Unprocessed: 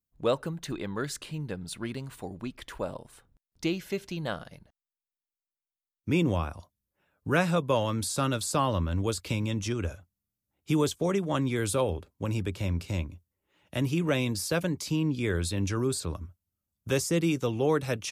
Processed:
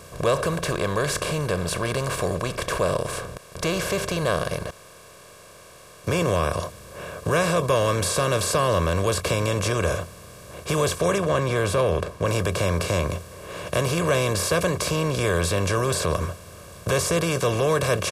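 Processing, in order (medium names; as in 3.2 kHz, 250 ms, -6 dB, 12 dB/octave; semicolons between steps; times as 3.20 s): spectral levelling over time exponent 0.4; 11.18–12.28 s: treble shelf 4.5 kHz -8 dB; in parallel at +3 dB: peak limiter -17.5 dBFS, peak gain reduction 10 dB; on the sum: comb 1.8 ms, depth 63%; trim -6.5 dB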